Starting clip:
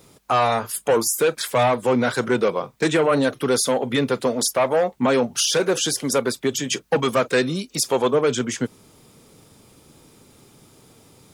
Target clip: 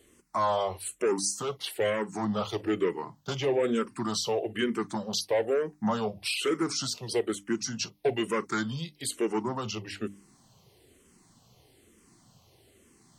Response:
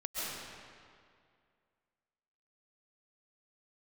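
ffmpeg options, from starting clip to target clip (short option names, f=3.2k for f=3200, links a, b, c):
-filter_complex "[0:a]asetrate=37926,aresample=44100,bandreject=f=50:t=h:w=6,bandreject=f=100:t=h:w=6,bandreject=f=150:t=h:w=6,bandreject=f=200:t=h:w=6,bandreject=f=250:t=h:w=6,bandreject=f=300:t=h:w=6,asplit=2[a][b];[b]afreqshift=-1.1[c];[a][c]amix=inputs=2:normalize=1,volume=-6dB"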